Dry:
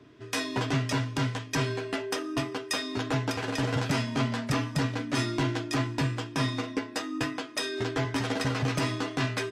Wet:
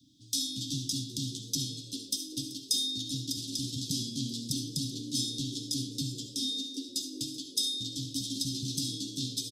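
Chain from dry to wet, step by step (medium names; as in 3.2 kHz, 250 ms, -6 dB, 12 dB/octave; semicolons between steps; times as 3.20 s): Chebyshev band-stop 290–3500 Hz, order 5; tilt EQ +2.5 dB/octave; 6.26–6.89 s: steep high-pass 230 Hz 36 dB/octave; frequency-shifting echo 383 ms, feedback 41%, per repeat +90 Hz, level -17 dB; reverberation RT60 0.50 s, pre-delay 25 ms, DRR 6 dB; trim -1 dB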